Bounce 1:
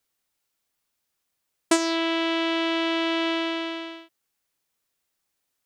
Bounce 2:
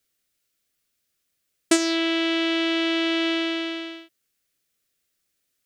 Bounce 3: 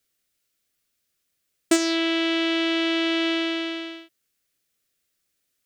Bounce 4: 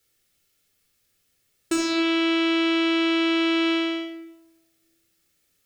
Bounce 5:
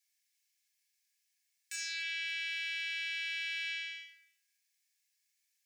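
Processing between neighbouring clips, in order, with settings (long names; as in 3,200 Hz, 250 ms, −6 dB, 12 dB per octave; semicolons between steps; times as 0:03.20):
parametric band 910 Hz −14 dB 0.6 octaves; level +3 dB
hard clipping −10.5 dBFS, distortion −25 dB
brickwall limiter −21.5 dBFS, peak gain reduction 11 dB; rectangular room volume 3,700 cubic metres, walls furnished, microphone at 4.2 metres; level +3.5 dB
wave folding −16.5 dBFS; Chebyshev high-pass with heavy ripple 1,600 Hz, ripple 6 dB; level −6.5 dB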